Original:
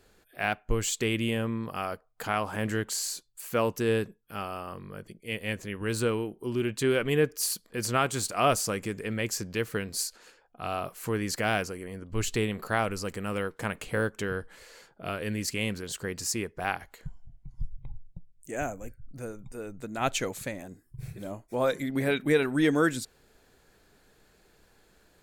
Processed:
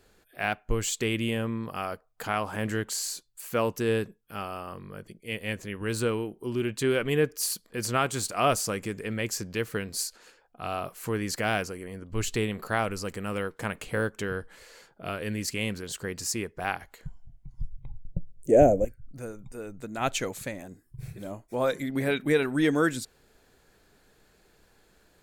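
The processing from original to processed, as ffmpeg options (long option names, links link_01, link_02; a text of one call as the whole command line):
ffmpeg -i in.wav -filter_complex "[0:a]asettb=1/sr,asplit=3[link_01][link_02][link_03];[link_01]atrim=end=18.054[link_04];[link_02]atrim=start=18.05:end=18.85,asetpts=PTS-STARTPTS,afade=type=in:duration=0.004:curve=qsin,afade=type=out:start_time=0.796:duration=0.004:curve=qsin,lowshelf=frequency=800:width_type=q:width=3:gain=12.5[link_05];[link_03]atrim=start=18.846[link_06];[link_04][link_05]acrossfade=duration=0.004:curve1=hsin:curve2=qsin[link_07];[link_07][link_06]acrossfade=duration=0.004:curve1=qsin:curve2=hsin" out.wav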